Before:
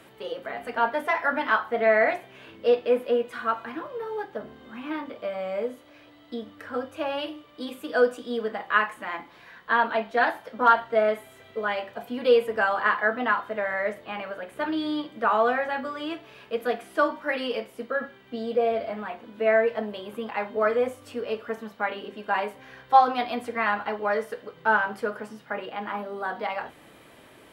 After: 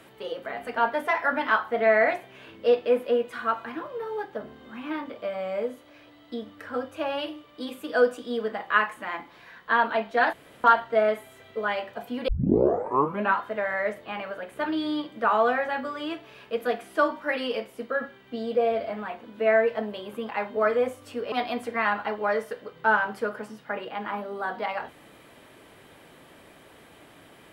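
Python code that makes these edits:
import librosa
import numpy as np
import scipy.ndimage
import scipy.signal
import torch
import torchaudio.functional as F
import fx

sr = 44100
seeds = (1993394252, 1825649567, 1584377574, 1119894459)

y = fx.edit(x, sr, fx.room_tone_fill(start_s=10.33, length_s=0.31),
    fx.tape_start(start_s=12.28, length_s=1.11),
    fx.cut(start_s=21.32, length_s=1.81), tone=tone)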